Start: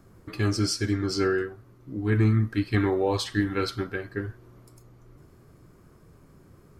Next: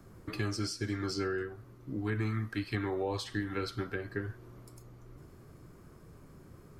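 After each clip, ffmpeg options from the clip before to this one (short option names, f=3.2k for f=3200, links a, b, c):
-filter_complex "[0:a]acrossover=split=89|590[a][b][c];[a]acompressor=threshold=-46dB:ratio=4[d];[b]acompressor=threshold=-35dB:ratio=4[e];[c]acompressor=threshold=-39dB:ratio=4[f];[d][e][f]amix=inputs=3:normalize=0"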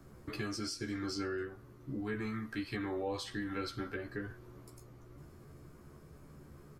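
-filter_complex "[0:a]asplit=2[a][b];[b]alimiter=level_in=7dB:limit=-24dB:level=0:latency=1,volume=-7dB,volume=-2dB[c];[a][c]amix=inputs=2:normalize=0,asplit=2[d][e];[e]adelay=14,volume=-4dB[f];[d][f]amix=inputs=2:normalize=0,volume=-7.5dB"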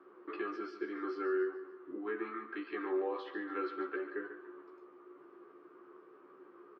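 -af "highpass=f=350:w=0.5412,highpass=f=350:w=1.3066,equalizer=f=360:t=q:w=4:g=10,equalizer=f=630:t=q:w=4:g=-7,equalizer=f=1.2k:t=q:w=4:g=8,equalizer=f=2.2k:t=q:w=4:g=-5,lowpass=f=2.7k:w=0.5412,lowpass=f=2.7k:w=1.3066,aecho=1:1:144|288|432|576:0.237|0.107|0.048|0.0216"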